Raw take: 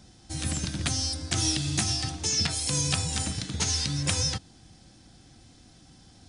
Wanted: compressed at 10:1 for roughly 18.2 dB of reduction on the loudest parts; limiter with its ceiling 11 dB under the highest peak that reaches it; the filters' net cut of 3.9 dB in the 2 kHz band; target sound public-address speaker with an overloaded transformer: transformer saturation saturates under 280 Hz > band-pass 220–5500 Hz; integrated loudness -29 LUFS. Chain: peaking EQ 2 kHz -5 dB; compression 10:1, threshold -42 dBFS; peak limiter -39.5 dBFS; transformer saturation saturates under 280 Hz; band-pass 220–5500 Hz; trim +26 dB

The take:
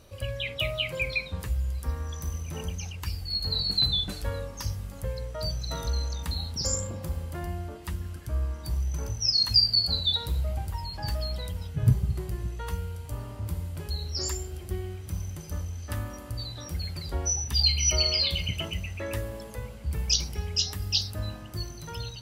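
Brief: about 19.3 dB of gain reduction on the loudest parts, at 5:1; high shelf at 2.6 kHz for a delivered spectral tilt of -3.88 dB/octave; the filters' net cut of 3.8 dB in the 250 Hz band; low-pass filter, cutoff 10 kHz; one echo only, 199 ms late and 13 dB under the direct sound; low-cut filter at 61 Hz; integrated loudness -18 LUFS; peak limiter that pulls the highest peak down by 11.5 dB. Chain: high-pass 61 Hz; low-pass 10 kHz; peaking EQ 250 Hz -7 dB; treble shelf 2.6 kHz +9 dB; compression 5:1, threshold -33 dBFS; peak limiter -27.5 dBFS; delay 199 ms -13 dB; trim +19 dB

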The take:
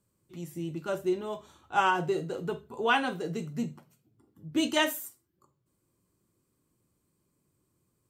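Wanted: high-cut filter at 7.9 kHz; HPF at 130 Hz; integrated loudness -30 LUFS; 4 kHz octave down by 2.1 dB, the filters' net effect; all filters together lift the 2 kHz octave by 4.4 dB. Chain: high-pass 130 Hz; low-pass 7.9 kHz; peaking EQ 2 kHz +8.5 dB; peaking EQ 4 kHz -9 dB; trim -1 dB

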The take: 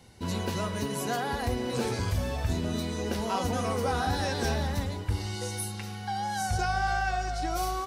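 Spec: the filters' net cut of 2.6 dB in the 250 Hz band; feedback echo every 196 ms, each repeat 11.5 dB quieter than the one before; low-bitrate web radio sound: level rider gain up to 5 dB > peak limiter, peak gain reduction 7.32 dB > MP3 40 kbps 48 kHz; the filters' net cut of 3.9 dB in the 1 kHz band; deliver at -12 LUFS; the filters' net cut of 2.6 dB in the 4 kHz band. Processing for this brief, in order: peaking EQ 250 Hz -3 dB; peaking EQ 1 kHz -5.5 dB; peaking EQ 4 kHz -3 dB; feedback delay 196 ms, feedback 27%, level -11.5 dB; level rider gain up to 5 dB; peak limiter -25.5 dBFS; trim +23.5 dB; MP3 40 kbps 48 kHz

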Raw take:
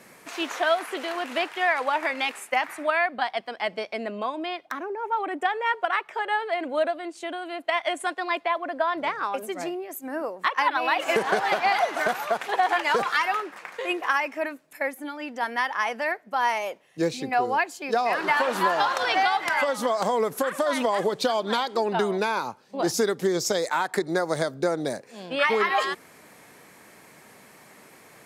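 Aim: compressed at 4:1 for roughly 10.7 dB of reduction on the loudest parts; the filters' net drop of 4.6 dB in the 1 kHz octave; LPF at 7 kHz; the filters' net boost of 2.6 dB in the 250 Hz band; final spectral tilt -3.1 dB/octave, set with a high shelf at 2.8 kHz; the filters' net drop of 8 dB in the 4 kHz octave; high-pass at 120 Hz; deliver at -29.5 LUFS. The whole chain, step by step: high-pass 120 Hz; low-pass 7 kHz; peaking EQ 250 Hz +4.5 dB; peaking EQ 1 kHz -5.5 dB; treble shelf 2.8 kHz -6.5 dB; peaking EQ 4 kHz -5 dB; compression 4:1, threshold -32 dBFS; trim +6 dB

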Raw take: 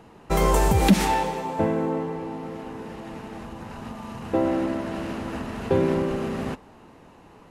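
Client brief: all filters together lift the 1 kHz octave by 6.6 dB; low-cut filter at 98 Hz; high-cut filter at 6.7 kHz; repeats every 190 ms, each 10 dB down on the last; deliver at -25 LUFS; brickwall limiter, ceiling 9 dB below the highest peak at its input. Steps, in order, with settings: high-pass 98 Hz; low-pass 6.7 kHz; peaking EQ 1 kHz +8 dB; peak limiter -15 dBFS; feedback delay 190 ms, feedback 32%, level -10 dB; trim +2 dB

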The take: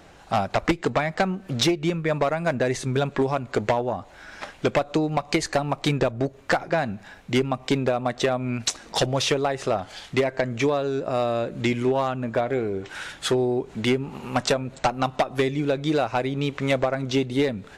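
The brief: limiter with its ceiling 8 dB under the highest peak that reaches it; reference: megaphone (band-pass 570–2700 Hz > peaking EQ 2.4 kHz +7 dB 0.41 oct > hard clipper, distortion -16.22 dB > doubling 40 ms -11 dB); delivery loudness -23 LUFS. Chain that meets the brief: peak limiter -21.5 dBFS; band-pass 570–2700 Hz; peaking EQ 2.4 kHz +7 dB 0.41 oct; hard clipper -25.5 dBFS; doubling 40 ms -11 dB; trim +12.5 dB

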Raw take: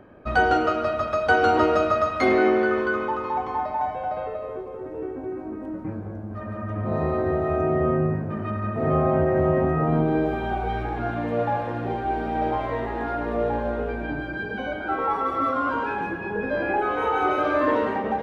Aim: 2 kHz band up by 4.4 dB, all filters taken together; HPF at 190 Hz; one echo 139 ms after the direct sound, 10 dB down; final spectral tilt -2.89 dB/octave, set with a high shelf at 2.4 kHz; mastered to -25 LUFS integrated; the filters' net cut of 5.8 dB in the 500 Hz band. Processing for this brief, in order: high-pass 190 Hz; peaking EQ 500 Hz -8.5 dB; peaking EQ 2 kHz +4 dB; treble shelf 2.4 kHz +7 dB; delay 139 ms -10 dB; trim -0.5 dB

